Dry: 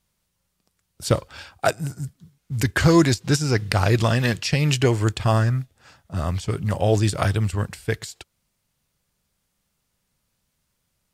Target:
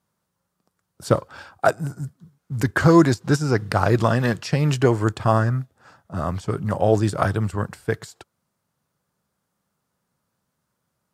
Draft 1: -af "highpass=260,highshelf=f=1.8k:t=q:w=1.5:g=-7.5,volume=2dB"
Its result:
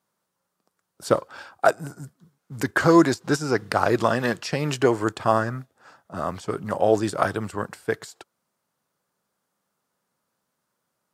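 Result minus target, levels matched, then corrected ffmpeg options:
125 Hz band -7.5 dB
-af "highpass=120,highshelf=f=1.8k:t=q:w=1.5:g=-7.5,volume=2dB"

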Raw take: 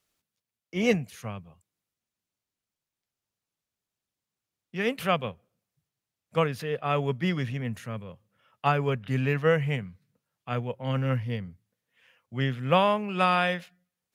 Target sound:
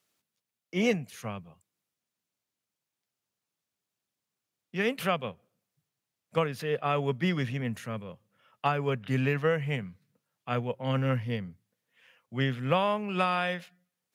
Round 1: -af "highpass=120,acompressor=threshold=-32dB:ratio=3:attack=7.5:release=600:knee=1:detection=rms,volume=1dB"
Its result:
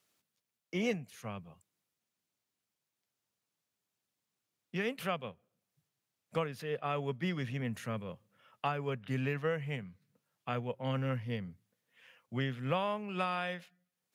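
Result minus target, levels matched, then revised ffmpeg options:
compressor: peak gain reduction +7 dB
-af "highpass=120,acompressor=threshold=-21.5dB:ratio=3:attack=7.5:release=600:knee=1:detection=rms,volume=1dB"

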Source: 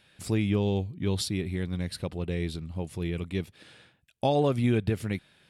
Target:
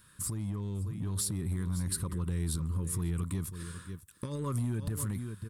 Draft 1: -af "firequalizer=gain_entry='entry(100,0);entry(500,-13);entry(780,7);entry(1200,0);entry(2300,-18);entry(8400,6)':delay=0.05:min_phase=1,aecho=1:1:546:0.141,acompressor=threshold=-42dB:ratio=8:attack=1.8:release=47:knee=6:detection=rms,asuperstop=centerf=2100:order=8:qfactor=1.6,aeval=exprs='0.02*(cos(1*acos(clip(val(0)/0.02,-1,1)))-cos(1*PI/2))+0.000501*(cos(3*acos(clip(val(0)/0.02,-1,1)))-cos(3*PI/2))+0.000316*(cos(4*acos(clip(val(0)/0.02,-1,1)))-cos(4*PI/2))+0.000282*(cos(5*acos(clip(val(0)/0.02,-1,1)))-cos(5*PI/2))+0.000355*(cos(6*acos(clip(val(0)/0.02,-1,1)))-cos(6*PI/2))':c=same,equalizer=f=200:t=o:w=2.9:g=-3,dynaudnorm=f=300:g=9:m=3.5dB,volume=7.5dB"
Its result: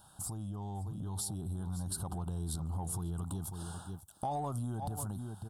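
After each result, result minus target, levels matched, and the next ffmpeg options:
1000 Hz band +12.0 dB; compressor: peak gain reduction +5 dB
-af "firequalizer=gain_entry='entry(100,0);entry(500,-13);entry(780,7);entry(1200,0);entry(2300,-18);entry(8400,6)':delay=0.05:min_phase=1,aecho=1:1:546:0.141,acompressor=threshold=-42dB:ratio=8:attack=1.8:release=47:knee=6:detection=rms,asuperstop=centerf=740:order=8:qfactor=1.6,aeval=exprs='0.02*(cos(1*acos(clip(val(0)/0.02,-1,1)))-cos(1*PI/2))+0.000501*(cos(3*acos(clip(val(0)/0.02,-1,1)))-cos(3*PI/2))+0.000316*(cos(4*acos(clip(val(0)/0.02,-1,1)))-cos(4*PI/2))+0.000282*(cos(5*acos(clip(val(0)/0.02,-1,1)))-cos(5*PI/2))+0.000355*(cos(6*acos(clip(val(0)/0.02,-1,1)))-cos(6*PI/2))':c=same,equalizer=f=200:t=o:w=2.9:g=-3,dynaudnorm=f=300:g=9:m=3.5dB,volume=7.5dB"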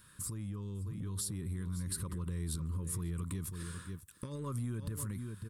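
compressor: peak gain reduction +5 dB
-af "firequalizer=gain_entry='entry(100,0);entry(500,-13);entry(780,7);entry(1200,0);entry(2300,-18);entry(8400,6)':delay=0.05:min_phase=1,aecho=1:1:546:0.141,acompressor=threshold=-36dB:ratio=8:attack=1.8:release=47:knee=6:detection=rms,asuperstop=centerf=740:order=8:qfactor=1.6,aeval=exprs='0.02*(cos(1*acos(clip(val(0)/0.02,-1,1)))-cos(1*PI/2))+0.000501*(cos(3*acos(clip(val(0)/0.02,-1,1)))-cos(3*PI/2))+0.000316*(cos(4*acos(clip(val(0)/0.02,-1,1)))-cos(4*PI/2))+0.000282*(cos(5*acos(clip(val(0)/0.02,-1,1)))-cos(5*PI/2))+0.000355*(cos(6*acos(clip(val(0)/0.02,-1,1)))-cos(6*PI/2))':c=same,equalizer=f=200:t=o:w=2.9:g=-3,dynaudnorm=f=300:g=9:m=3.5dB,volume=7.5dB"

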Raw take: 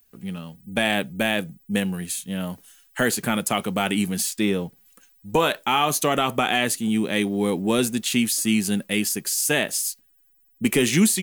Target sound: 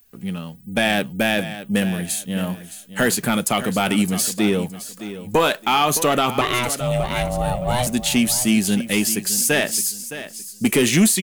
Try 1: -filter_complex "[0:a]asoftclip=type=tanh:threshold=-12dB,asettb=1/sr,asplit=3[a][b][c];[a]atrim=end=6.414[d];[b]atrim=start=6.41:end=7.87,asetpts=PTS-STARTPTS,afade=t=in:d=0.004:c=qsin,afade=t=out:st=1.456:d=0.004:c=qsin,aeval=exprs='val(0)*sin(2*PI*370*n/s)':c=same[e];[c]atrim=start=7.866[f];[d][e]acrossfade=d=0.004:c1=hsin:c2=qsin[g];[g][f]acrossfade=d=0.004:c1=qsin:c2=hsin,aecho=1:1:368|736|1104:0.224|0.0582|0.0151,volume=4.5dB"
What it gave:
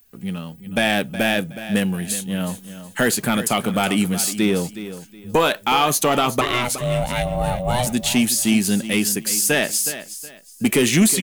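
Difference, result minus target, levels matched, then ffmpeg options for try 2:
echo 0.247 s early
-filter_complex "[0:a]asoftclip=type=tanh:threshold=-12dB,asettb=1/sr,asplit=3[a][b][c];[a]atrim=end=6.414[d];[b]atrim=start=6.41:end=7.87,asetpts=PTS-STARTPTS,afade=t=in:d=0.004:c=qsin,afade=t=out:st=1.456:d=0.004:c=qsin,aeval=exprs='val(0)*sin(2*PI*370*n/s)':c=same[e];[c]atrim=start=7.866[f];[d][e]acrossfade=d=0.004:c1=hsin:c2=qsin[g];[g][f]acrossfade=d=0.004:c1=qsin:c2=hsin,aecho=1:1:615|1230|1845:0.224|0.0582|0.0151,volume=4.5dB"

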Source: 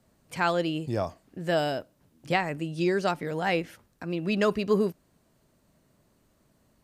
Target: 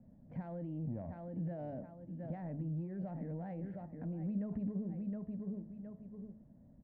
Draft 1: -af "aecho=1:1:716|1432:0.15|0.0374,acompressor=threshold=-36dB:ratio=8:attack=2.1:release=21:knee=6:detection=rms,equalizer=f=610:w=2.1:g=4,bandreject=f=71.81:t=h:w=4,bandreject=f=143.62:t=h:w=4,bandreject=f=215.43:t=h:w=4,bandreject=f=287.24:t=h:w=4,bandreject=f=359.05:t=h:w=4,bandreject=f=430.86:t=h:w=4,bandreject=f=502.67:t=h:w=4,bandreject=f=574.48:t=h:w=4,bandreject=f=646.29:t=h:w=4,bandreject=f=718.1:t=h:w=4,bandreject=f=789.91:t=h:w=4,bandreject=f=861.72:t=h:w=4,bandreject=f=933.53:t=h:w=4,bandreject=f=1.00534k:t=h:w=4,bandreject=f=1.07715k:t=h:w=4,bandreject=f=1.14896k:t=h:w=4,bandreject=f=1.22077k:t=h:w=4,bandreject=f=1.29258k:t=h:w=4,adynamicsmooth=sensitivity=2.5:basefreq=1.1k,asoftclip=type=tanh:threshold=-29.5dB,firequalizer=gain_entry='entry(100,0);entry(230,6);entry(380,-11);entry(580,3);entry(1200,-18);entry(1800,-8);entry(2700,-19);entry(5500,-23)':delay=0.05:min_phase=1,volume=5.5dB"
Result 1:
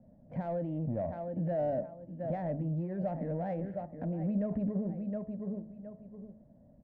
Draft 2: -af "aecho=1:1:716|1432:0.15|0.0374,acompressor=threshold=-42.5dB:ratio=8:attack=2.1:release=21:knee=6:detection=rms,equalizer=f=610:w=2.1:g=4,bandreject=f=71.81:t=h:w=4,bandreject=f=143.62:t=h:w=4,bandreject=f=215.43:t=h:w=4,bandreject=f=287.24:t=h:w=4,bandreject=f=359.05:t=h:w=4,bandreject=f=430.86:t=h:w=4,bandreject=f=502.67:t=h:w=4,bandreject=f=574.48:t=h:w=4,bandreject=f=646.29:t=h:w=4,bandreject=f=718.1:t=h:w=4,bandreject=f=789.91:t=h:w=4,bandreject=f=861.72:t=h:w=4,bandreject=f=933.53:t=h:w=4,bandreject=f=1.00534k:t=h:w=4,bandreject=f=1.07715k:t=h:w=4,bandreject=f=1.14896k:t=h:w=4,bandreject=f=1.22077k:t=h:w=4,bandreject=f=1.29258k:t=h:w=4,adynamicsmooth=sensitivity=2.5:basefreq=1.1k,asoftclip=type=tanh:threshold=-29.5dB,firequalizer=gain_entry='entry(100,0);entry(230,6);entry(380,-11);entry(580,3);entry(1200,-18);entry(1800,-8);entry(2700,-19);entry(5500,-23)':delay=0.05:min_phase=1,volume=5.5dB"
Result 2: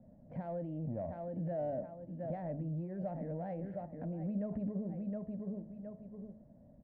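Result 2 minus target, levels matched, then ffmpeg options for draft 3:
500 Hz band +5.5 dB
-af "aecho=1:1:716|1432:0.15|0.0374,acompressor=threshold=-42.5dB:ratio=8:attack=2.1:release=21:knee=6:detection=rms,equalizer=f=610:w=2.1:g=-5.5,bandreject=f=71.81:t=h:w=4,bandreject=f=143.62:t=h:w=4,bandreject=f=215.43:t=h:w=4,bandreject=f=287.24:t=h:w=4,bandreject=f=359.05:t=h:w=4,bandreject=f=430.86:t=h:w=4,bandreject=f=502.67:t=h:w=4,bandreject=f=574.48:t=h:w=4,bandreject=f=646.29:t=h:w=4,bandreject=f=718.1:t=h:w=4,bandreject=f=789.91:t=h:w=4,bandreject=f=861.72:t=h:w=4,bandreject=f=933.53:t=h:w=4,bandreject=f=1.00534k:t=h:w=4,bandreject=f=1.07715k:t=h:w=4,bandreject=f=1.14896k:t=h:w=4,bandreject=f=1.22077k:t=h:w=4,bandreject=f=1.29258k:t=h:w=4,adynamicsmooth=sensitivity=2.5:basefreq=1.1k,asoftclip=type=tanh:threshold=-29.5dB,firequalizer=gain_entry='entry(100,0);entry(230,6);entry(380,-11);entry(580,3);entry(1200,-18);entry(1800,-8);entry(2700,-19);entry(5500,-23)':delay=0.05:min_phase=1,volume=5.5dB"

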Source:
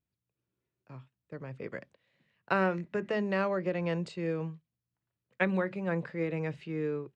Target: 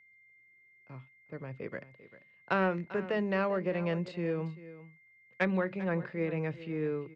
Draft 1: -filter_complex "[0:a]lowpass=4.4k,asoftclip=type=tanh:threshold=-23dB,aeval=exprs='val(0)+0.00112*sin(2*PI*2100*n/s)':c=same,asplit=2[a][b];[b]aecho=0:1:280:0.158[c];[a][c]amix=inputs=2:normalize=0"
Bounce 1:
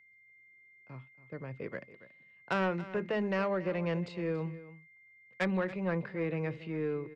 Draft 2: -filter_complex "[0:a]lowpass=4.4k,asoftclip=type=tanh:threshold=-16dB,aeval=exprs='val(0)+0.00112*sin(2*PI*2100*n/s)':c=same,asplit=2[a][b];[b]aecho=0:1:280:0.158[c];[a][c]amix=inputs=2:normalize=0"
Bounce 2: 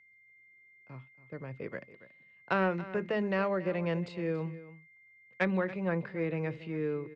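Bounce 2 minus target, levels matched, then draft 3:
echo 0.114 s early
-filter_complex "[0:a]lowpass=4.4k,asoftclip=type=tanh:threshold=-16dB,aeval=exprs='val(0)+0.00112*sin(2*PI*2100*n/s)':c=same,asplit=2[a][b];[b]aecho=0:1:394:0.158[c];[a][c]amix=inputs=2:normalize=0"

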